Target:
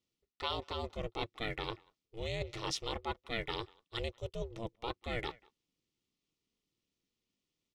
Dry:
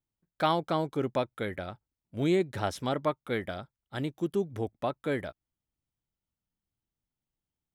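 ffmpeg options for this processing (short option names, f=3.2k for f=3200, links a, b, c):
-filter_complex "[0:a]asplit=2[a][b];[b]adelay=190,highpass=300,lowpass=3.4k,asoftclip=type=hard:threshold=-22.5dB,volume=-26dB[c];[a][c]amix=inputs=2:normalize=0,areverse,acompressor=threshold=-38dB:ratio=6,areverse,firequalizer=gain_entry='entry(160,0);entry(250,3);entry(380,-4);entry(2800,10);entry(5500,9);entry(11000,-7)':delay=0.05:min_phase=1,aeval=exprs='val(0)*sin(2*PI*230*n/s)':c=same,asplit=2[d][e];[e]aeval=exprs='sgn(val(0))*max(abs(val(0))-0.0015,0)':c=same,volume=-9dB[f];[d][f]amix=inputs=2:normalize=0,asuperstop=centerf=1600:order=4:qfactor=5.6,volume=3dB"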